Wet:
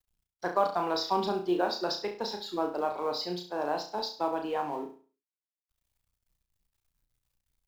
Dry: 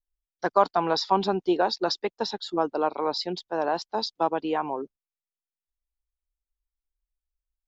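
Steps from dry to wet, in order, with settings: G.711 law mismatch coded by mu; flutter echo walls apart 5.8 m, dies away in 0.4 s; gain -7 dB

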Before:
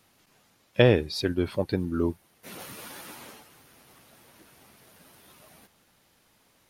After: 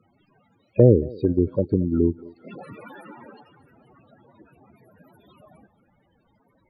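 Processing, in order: loudest bins only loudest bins 16; thinning echo 0.224 s, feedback 46%, high-pass 330 Hz, level -19.5 dB; treble ducked by the level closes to 490 Hz, closed at -24 dBFS; gain +7 dB

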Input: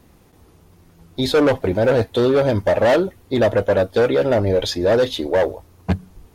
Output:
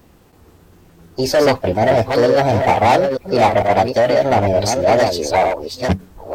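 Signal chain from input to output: reverse delay 0.453 s, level -5 dB; formant shift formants +4 st; gain +2 dB

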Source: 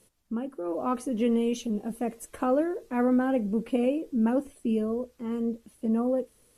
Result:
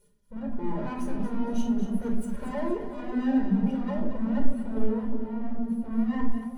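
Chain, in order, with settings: minimum comb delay 4.9 ms; in parallel at -3 dB: level quantiser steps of 11 dB; on the sum: power-law curve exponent 0.7; soft clip -25.5 dBFS, distortion -11 dB; on a send: split-band echo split 810 Hz, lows 0.373 s, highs 0.231 s, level -6.5 dB; on the sum: shoebox room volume 2700 m³, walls furnished, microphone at 4.7 m; spectral expander 1.5:1

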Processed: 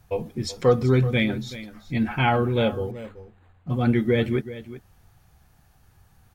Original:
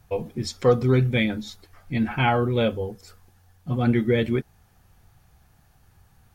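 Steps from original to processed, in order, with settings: on a send: echo 0.38 s -15 dB; 2.91–3.7 on the sum: decimation joined by straight lines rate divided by 8×

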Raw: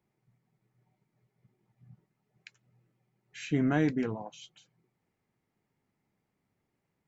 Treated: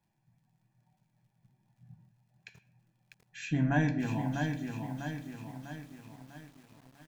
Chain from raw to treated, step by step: comb 1.2 ms, depth 76%; crackle 92/s -65 dBFS; on a send at -7 dB: reverb RT60 0.65 s, pre-delay 6 ms; on the sum: lo-fi delay 0.648 s, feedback 55%, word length 9-bit, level -5 dB; gain -2.5 dB

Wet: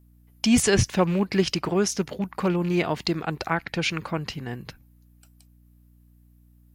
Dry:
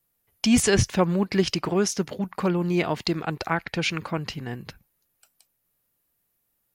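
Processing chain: rattling part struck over -25 dBFS, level -31 dBFS; hum 60 Hz, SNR 29 dB

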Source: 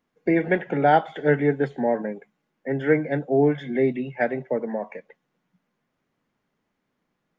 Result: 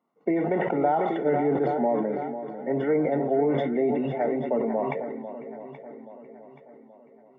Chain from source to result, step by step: HPF 160 Hz; tilt +2.5 dB/oct; notch 480 Hz, Q 12; compressor, threshold -24 dBFS, peak gain reduction 10.5 dB; polynomial smoothing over 65 samples; resonator 230 Hz, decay 0.22 s, harmonics all, mix 50%; on a send: swung echo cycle 0.827 s, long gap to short 1.5:1, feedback 42%, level -11 dB; on the sum: sustainer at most 26 dB/s; gain +9 dB

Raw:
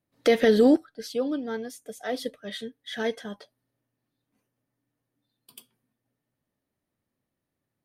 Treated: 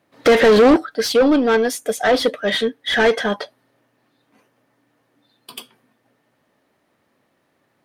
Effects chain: overdrive pedal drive 27 dB, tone 1800 Hz, clips at -9 dBFS; 0.91–1.97 high shelf 7700 Hz +9 dB; gain +4.5 dB

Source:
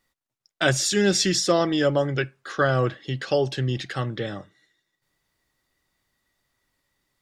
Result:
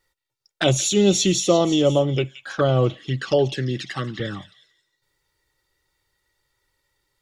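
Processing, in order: 3.52–4.2 HPF 160 Hz 12 dB/oct; envelope flanger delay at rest 2.2 ms, full sweep at -21 dBFS; delay with a stepping band-pass 0.173 s, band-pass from 3100 Hz, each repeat 0.7 oct, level -10 dB; gain +4.5 dB

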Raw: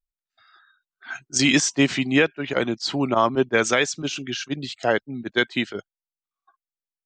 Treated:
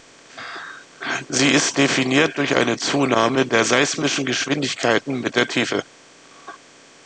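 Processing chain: per-bin compression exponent 0.4; downsampling 22050 Hz; gain -2 dB

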